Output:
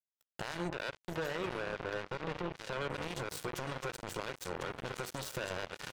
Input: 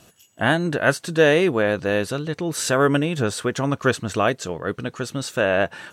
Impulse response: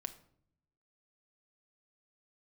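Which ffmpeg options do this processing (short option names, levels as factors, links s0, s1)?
-filter_complex "[1:a]atrim=start_sample=2205,atrim=end_sample=4410[s0];[0:a][s0]afir=irnorm=-1:irlink=0,acompressor=threshold=0.02:ratio=20,aecho=1:1:2.1:0.64,asoftclip=type=tanh:threshold=0.0531,asettb=1/sr,asplit=3[s1][s2][s3];[s1]atrim=end=0.694[s4];[s2]atrim=start=0.69:end=2.9,asetpts=PTS-STARTPTS,afade=t=in:d=0.004:c=qsin,afade=t=out:st=2.206:d=0.004:c=qsin,lowpass=f=2900:w=0.5412,lowpass=f=2900:w=1.3066[s5];[s3]atrim=start=2.896[s6];[s4][s5]acrossfade=d=0.004:c1=hsin:c2=qsin[s7];[s7][s6]acrossfade=d=0.004:c1=qsin:c2=hsin,aecho=1:1:1049:0.316,alimiter=level_in=3.35:limit=0.0631:level=0:latency=1:release=33,volume=0.299,acrusher=bits=5:mix=0:aa=0.5,volume=2"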